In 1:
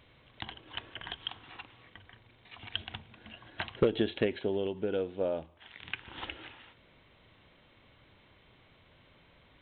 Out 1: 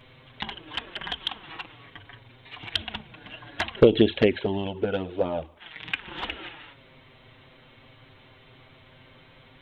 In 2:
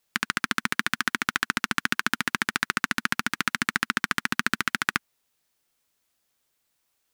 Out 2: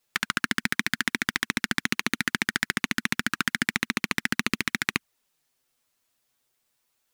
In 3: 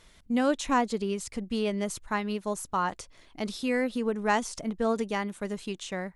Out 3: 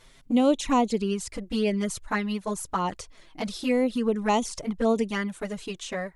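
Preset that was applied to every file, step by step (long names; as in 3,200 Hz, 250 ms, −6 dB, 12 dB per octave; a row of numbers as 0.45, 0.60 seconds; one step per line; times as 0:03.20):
flanger swept by the level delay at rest 8.2 ms, full sweep at −23 dBFS
loudness normalisation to −27 LKFS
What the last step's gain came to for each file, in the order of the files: +11.5, +3.0, +5.5 decibels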